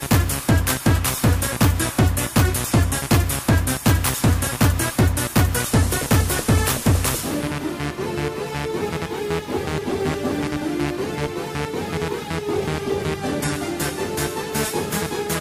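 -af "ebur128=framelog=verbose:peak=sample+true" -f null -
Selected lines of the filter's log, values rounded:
Integrated loudness:
  I:         -21.3 LUFS
  Threshold: -31.3 LUFS
Loudness range:
  LRA:         5.7 LU
  Threshold: -41.4 LUFS
  LRA low:   -24.9 LUFS
  LRA high:  -19.1 LUFS
Sample peak:
  Peak:       -7.8 dBFS
True peak:
  Peak:       -7.3 dBFS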